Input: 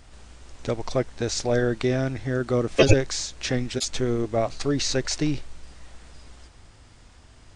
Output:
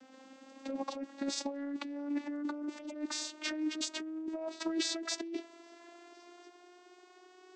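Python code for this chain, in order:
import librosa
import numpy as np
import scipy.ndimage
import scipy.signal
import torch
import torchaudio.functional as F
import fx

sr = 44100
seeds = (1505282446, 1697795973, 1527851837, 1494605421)

y = fx.vocoder_glide(x, sr, note=60, semitones=6)
y = fx.low_shelf(y, sr, hz=160.0, db=-8.5)
y = fx.over_compress(y, sr, threshold_db=-34.0, ratio=-1.0)
y = y * librosa.db_to_amplitude(-3.5)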